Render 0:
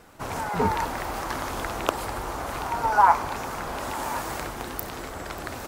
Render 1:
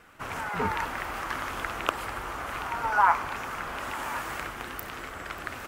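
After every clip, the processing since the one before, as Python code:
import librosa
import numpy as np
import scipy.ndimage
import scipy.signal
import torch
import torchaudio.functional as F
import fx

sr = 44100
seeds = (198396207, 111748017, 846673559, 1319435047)

y = fx.band_shelf(x, sr, hz=1900.0, db=8.0, octaves=1.7)
y = y * librosa.db_to_amplitude(-6.5)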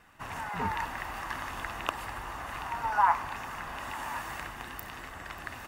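y = x + 0.41 * np.pad(x, (int(1.1 * sr / 1000.0), 0))[:len(x)]
y = y * librosa.db_to_amplitude(-4.5)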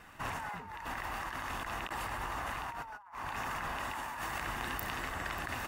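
y = fx.over_compress(x, sr, threshold_db=-41.0, ratio=-1.0)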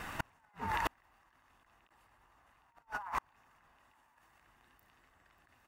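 y = fx.gate_flip(x, sr, shuts_db=-31.0, range_db=-40)
y = y * librosa.db_to_amplitude(10.5)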